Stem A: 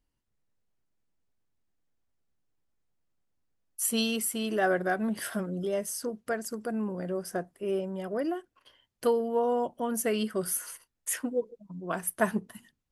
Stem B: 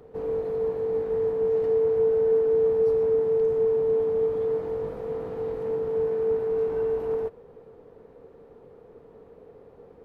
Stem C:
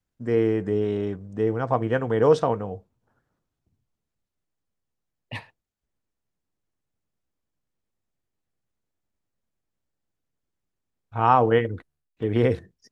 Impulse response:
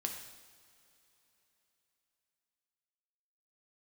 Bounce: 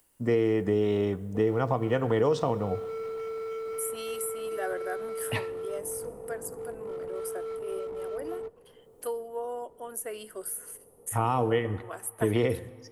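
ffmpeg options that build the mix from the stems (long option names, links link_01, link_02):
-filter_complex "[0:a]highpass=frequency=330:width=0.5412,highpass=frequency=330:width=1.3066,highshelf=frequency=7000:width_type=q:width=1.5:gain=10,acompressor=mode=upward:threshold=-42dB:ratio=2.5,volume=-8.5dB,asplit=2[link_01][link_02];[link_02]volume=-18dB[link_03];[1:a]lowpass=1400,asoftclip=type=hard:threshold=-26dB,adelay=1200,volume=-8dB[link_04];[2:a]volume=2.5dB,asplit=2[link_05][link_06];[link_06]volume=-15.5dB[link_07];[link_04][link_05]amix=inputs=2:normalize=0,asuperstop=centerf=1600:order=4:qfactor=7.4,alimiter=limit=-11.5dB:level=0:latency=1:release=390,volume=0dB[link_08];[3:a]atrim=start_sample=2205[link_09];[link_03][link_07]amix=inputs=2:normalize=0[link_10];[link_10][link_09]afir=irnorm=-1:irlink=0[link_11];[link_01][link_08][link_11]amix=inputs=3:normalize=0,acrossover=split=390|2500[link_12][link_13][link_14];[link_12]acompressor=threshold=-27dB:ratio=4[link_15];[link_13]acompressor=threshold=-26dB:ratio=4[link_16];[link_14]acompressor=threshold=-35dB:ratio=4[link_17];[link_15][link_16][link_17]amix=inputs=3:normalize=0"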